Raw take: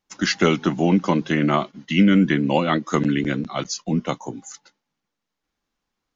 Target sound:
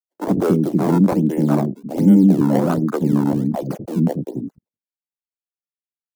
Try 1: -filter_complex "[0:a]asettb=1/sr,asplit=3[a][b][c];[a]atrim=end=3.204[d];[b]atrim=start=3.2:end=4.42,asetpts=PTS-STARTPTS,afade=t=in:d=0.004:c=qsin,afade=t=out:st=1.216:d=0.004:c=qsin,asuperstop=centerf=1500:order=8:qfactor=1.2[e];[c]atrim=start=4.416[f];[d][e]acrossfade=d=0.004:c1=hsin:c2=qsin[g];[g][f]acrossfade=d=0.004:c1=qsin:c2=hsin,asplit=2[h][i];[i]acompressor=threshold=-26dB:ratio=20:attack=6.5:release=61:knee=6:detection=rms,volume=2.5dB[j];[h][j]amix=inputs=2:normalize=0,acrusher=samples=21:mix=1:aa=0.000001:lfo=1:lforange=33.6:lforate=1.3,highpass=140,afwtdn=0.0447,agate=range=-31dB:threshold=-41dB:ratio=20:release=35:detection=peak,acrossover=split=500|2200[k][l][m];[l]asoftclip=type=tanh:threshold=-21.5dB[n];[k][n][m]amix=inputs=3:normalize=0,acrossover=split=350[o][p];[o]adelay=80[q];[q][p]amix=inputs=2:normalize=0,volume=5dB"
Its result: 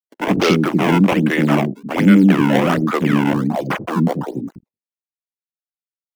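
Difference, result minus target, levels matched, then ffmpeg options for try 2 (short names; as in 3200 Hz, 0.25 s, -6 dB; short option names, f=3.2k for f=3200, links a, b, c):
2000 Hz band +15.0 dB
-filter_complex "[0:a]asettb=1/sr,asplit=3[a][b][c];[a]atrim=end=3.204[d];[b]atrim=start=3.2:end=4.42,asetpts=PTS-STARTPTS,afade=t=in:d=0.004:c=qsin,afade=t=out:st=1.216:d=0.004:c=qsin,asuperstop=centerf=1500:order=8:qfactor=1.2[e];[c]atrim=start=4.416[f];[d][e]acrossfade=d=0.004:c1=hsin:c2=qsin[g];[g][f]acrossfade=d=0.004:c1=qsin:c2=hsin,asplit=2[h][i];[i]acompressor=threshold=-26dB:ratio=20:attack=6.5:release=61:knee=6:detection=rms,volume=2.5dB[j];[h][j]amix=inputs=2:normalize=0,acrusher=samples=21:mix=1:aa=0.000001:lfo=1:lforange=33.6:lforate=1.3,highpass=140,equalizer=f=1.9k:t=o:w=2.8:g=-10,afwtdn=0.0447,agate=range=-31dB:threshold=-41dB:ratio=20:release=35:detection=peak,acrossover=split=500|2200[k][l][m];[l]asoftclip=type=tanh:threshold=-21.5dB[n];[k][n][m]amix=inputs=3:normalize=0,acrossover=split=350[o][p];[o]adelay=80[q];[q][p]amix=inputs=2:normalize=0,volume=5dB"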